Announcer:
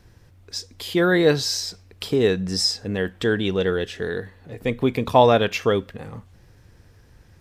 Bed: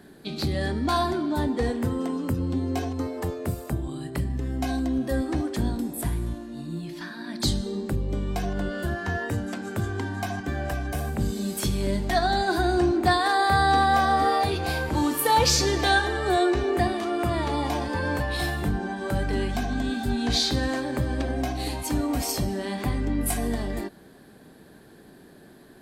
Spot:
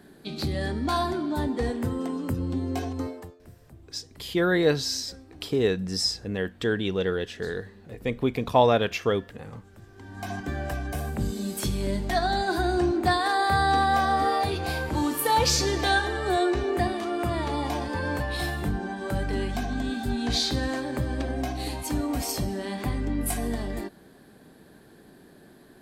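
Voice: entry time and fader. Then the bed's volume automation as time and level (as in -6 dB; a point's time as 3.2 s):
3.40 s, -4.5 dB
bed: 3.09 s -2 dB
3.38 s -22.5 dB
9.88 s -22.5 dB
10.31 s -2 dB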